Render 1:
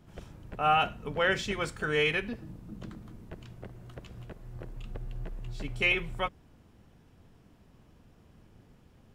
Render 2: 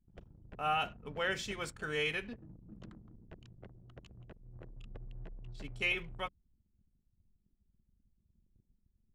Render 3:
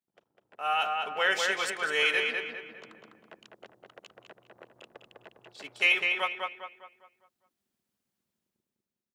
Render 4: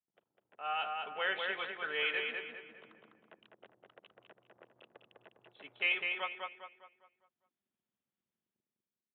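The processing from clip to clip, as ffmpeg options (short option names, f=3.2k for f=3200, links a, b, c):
-af "anlmdn=0.0158,highshelf=f=3.9k:g=7.5,volume=-8.5dB"
-filter_complex "[0:a]highpass=580,dynaudnorm=f=120:g=13:m=11.5dB,asplit=2[a][b];[b]adelay=202,lowpass=f=3.4k:p=1,volume=-3dB,asplit=2[c][d];[d]adelay=202,lowpass=f=3.4k:p=1,volume=0.43,asplit=2[e][f];[f]adelay=202,lowpass=f=3.4k:p=1,volume=0.43,asplit=2[g][h];[h]adelay=202,lowpass=f=3.4k:p=1,volume=0.43,asplit=2[i][j];[j]adelay=202,lowpass=f=3.4k:p=1,volume=0.43,asplit=2[k][l];[l]adelay=202,lowpass=f=3.4k:p=1,volume=0.43[m];[a][c][e][g][i][k][m]amix=inputs=7:normalize=0,volume=-2dB"
-af "highpass=70,aresample=8000,aresample=44100,volume=-8dB"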